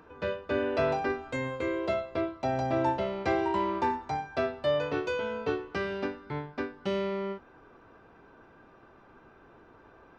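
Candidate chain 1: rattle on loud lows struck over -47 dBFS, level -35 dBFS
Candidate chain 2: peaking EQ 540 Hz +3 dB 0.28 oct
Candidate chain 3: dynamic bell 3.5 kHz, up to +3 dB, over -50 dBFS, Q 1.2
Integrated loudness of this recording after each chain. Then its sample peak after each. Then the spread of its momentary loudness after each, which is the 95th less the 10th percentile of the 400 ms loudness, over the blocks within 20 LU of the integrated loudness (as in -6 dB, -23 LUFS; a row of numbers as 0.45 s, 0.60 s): -31.0 LUFS, -30.5 LUFS, -31.0 LUFS; -15.0 dBFS, -14.5 dBFS, -14.5 dBFS; 7 LU, 7 LU, 7 LU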